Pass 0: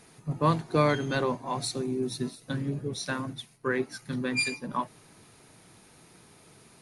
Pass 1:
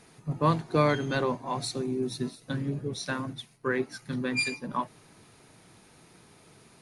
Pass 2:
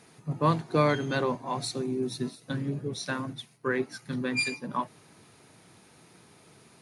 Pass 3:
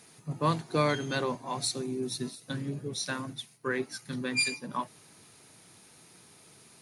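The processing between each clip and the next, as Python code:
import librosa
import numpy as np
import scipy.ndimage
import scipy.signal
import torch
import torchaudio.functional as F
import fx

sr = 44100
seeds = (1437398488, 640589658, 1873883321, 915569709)

y1 = fx.high_shelf(x, sr, hz=10000.0, db=-6.5)
y2 = scipy.signal.sosfilt(scipy.signal.butter(2, 79.0, 'highpass', fs=sr, output='sos'), y1)
y3 = fx.high_shelf(y2, sr, hz=3500.0, db=10.0)
y3 = y3 * librosa.db_to_amplitude(-3.5)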